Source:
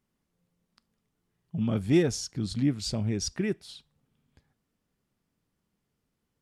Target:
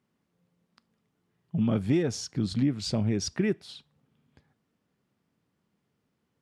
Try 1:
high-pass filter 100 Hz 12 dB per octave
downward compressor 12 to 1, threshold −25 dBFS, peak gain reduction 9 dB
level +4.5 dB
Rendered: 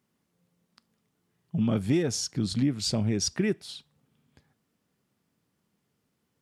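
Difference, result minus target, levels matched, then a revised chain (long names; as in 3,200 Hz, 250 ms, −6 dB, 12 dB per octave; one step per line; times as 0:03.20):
8,000 Hz band +5.5 dB
high-pass filter 100 Hz 12 dB per octave
high-shelf EQ 5,900 Hz −11.5 dB
downward compressor 12 to 1, threshold −25 dBFS, peak gain reduction 9 dB
level +4.5 dB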